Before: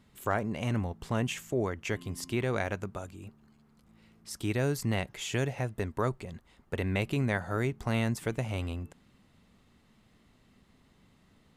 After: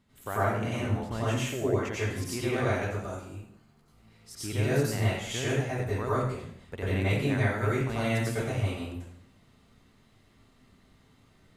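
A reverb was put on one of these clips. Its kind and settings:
dense smooth reverb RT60 0.67 s, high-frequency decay 0.9×, pre-delay 80 ms, DRR −9 dB
level −6.5 dB

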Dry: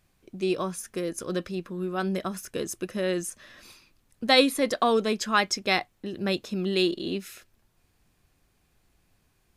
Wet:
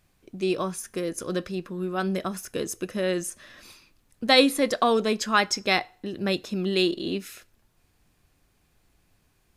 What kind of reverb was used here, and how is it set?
feedback delay network reverb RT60 0.47 s, low-frequency decay 0.75×, high-frequency decay 0.85×, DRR 19 dB
level +1.5 dB

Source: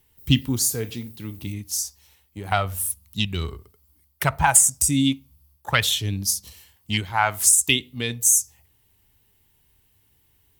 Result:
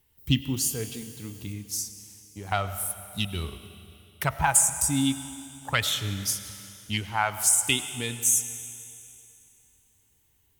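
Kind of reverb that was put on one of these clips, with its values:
comb and all-pass reverb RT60 2.7 s, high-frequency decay 1×, pre-delay 60 ms, DRR 11.5 dB
level −5 dB

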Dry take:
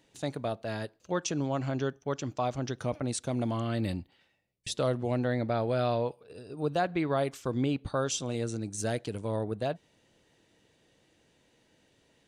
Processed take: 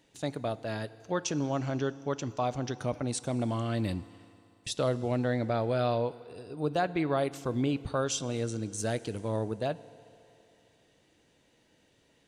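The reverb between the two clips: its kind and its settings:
feedback delay network reverb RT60 2.9 s, low-frequency decay 0.75×, high-frequency decay 1×, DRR 16.5 dB

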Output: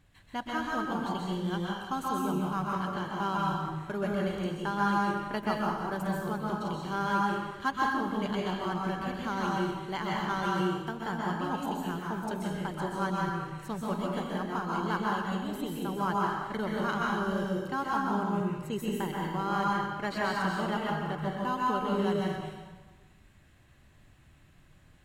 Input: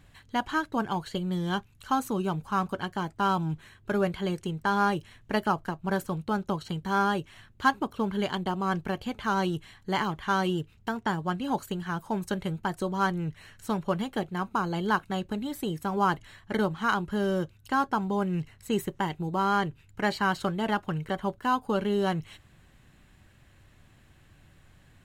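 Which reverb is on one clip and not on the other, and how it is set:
dense smooth reverb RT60 1.3 s, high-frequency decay 0.8×, pre-delay 115 ms, DRR −4 dB
level −7.5 dB

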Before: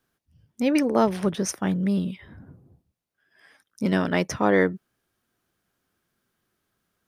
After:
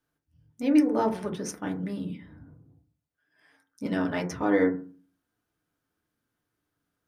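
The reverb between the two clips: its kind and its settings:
feedback delay network reverb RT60 0.39 s, low-frequency decay 1.4×, high-frequency decay 0.3×, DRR 1 dB
level −8.5 dB

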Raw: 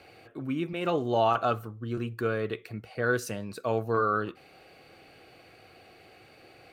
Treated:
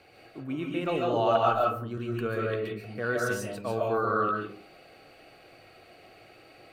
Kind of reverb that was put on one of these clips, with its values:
comb and all-pass reverb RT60 0.49 s, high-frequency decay 0.45×, pre-delay 100 ms, DRR −2.5 dB
level −3.5 dB

